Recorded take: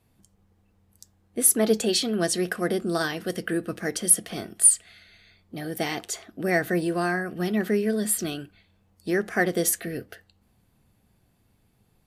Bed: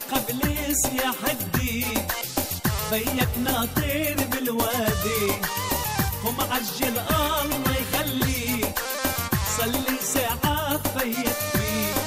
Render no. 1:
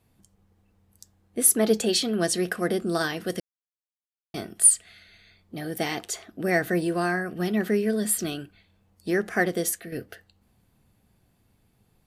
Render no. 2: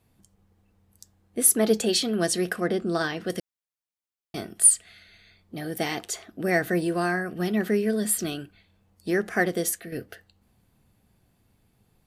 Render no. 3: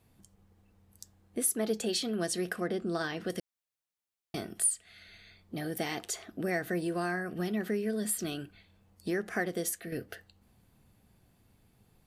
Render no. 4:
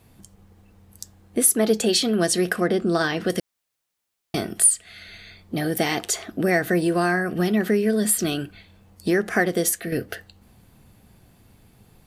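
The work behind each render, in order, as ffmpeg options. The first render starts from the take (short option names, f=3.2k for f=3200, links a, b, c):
-filter_complex "[0:a]asplit=4[a][b][c][d];[a]atrim=end=3.4,asetpts=PTS-STARTPTS,afade=t=out:st=3.396:d=0.004:c=hsin[e];[b]atrim=start=3.4:end=4.34,asetpts=PTS-STARTPTS,volume=0[f];[c]atrim=start=4.34:end=9.92,asetpts=PTS-STARTPTS,afade=t=in:d=0.004:c=hsin,afade=t=out:st=5.04:d=0.54:silence=0.398107[g];[d]atrim=start=9.92,asetpts=PTS-STARTPTS,afade=t=in:d=0.004:c=hsin:silence=0.398107[h];[e][f][g][h]concat=n=4:v=0:a=1"
-filter_complex "[0:a]asettb=1/sr,asplit=3[a][b][c];[a]atrim=end=2.604[d];[b]atrim=start=2.6:end=3.3,asetpts=PTS-STARTPTS,afade=t=in:d=0.004:c=qsin,afade=t=out:st=0.696:d=0.004:c=qsin,equalizer=f=12k:w=0.78:g=-14.5[e];[c]atrim=start=3.296[f];[d][e]acrossfade=d=0.004:c1=hsin:c2=qsin[g];[g][f]acrossfade=d=0.004:c1=qsin:c2=hsin"
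-af "acompressor=threshold=-35dB:ratio=2"
-af "volume=11.5dB"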